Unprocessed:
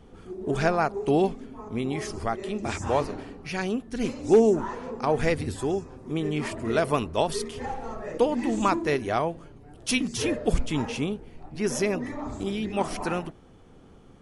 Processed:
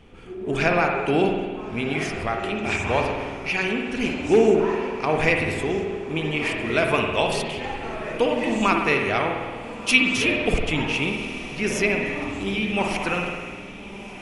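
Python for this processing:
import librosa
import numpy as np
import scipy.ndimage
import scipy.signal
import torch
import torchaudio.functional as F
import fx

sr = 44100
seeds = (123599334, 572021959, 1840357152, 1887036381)

y = fx.peak_eq(x, sr, hz=2500.0, db=13.0, octaves=0.79)
y = fx.echo_diffused(y, sr, ms=1341, feedback_pct=52, wet_db=-15)
y = fx.rev_spring(y, sr, rt60_s=1.5, pass_ms=(51,), chirp_ms=45, drr_db=2.0)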